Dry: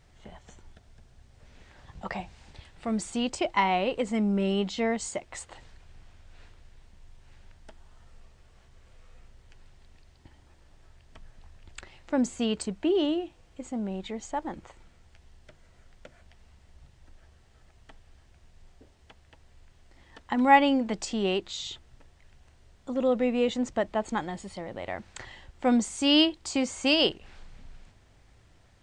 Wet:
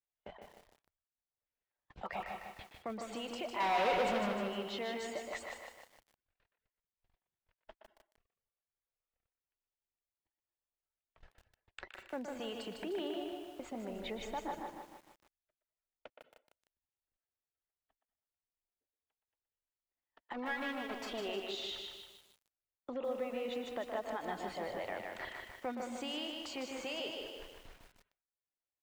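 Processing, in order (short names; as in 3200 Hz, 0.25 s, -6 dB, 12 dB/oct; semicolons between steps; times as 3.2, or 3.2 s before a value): 20.33–21.2 minimum comb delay 3.1 ms; gate -44 dBFS, range -43 dB; compressor 6:1, threshold -38 dBFS, peak gain reduction 20 dB; 13.9–14.4 low shelf 180 Hz +11 dB; reverb RT60 0.55 s, pre-delay 0.18 s, DRR 12.5 dB; limiter -34 dBFS, peak gain reduction 11 dB; reverb removal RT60 0.64 s; 3.6–4.33 sample leveller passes 5; three-band isolator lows -13 dB, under 340 Hz, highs -18 dB, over 4200 Hz; speakerphone echo 0.12 s, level -7 dB; lo-fi delay 0.153 s, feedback 55%, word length 11-bit, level -4 dB; gain +5.5 dB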